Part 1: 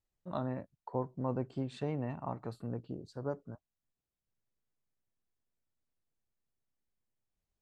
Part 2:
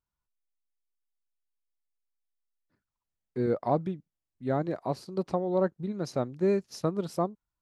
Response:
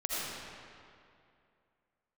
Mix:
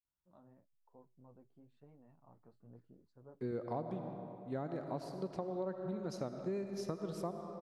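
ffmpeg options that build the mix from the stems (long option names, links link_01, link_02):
-filter_complex "[0:a]highshelf=frequency=2300:gain=-11.5,flanger=delay=3.4:depth=10:regen=-40:speed=1:shape=triangular,volume=-15.5dB,afade=type=in:start_time=2.18:duration=0.49:silence=0.473151[link_01];[1:a]adelay=50,volume=-9.5dB,asplit=2[link_02][link_03];[link_03]volume=-11dB[link_04];[2:a]atrim=start_sample=2205[link_05];[link_04][link_05]afir=irnorm=-1:irlink=0[link_06];[link_01][link_02][link_06]amix=inputs=3:normalize=0,acompressor=threshold=-35dB:ratio=6"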